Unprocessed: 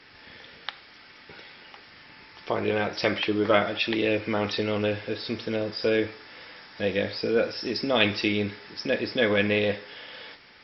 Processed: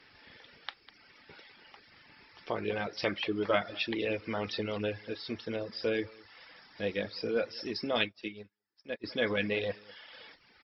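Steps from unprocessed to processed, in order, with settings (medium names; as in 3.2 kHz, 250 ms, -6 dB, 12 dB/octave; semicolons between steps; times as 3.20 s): delay 200 ms -14.5 dB; reverb removal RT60 0.75 s; 8.01–9.04 s: upward expansion 2.5:1, over -44 dBFS; trim -6.5 dB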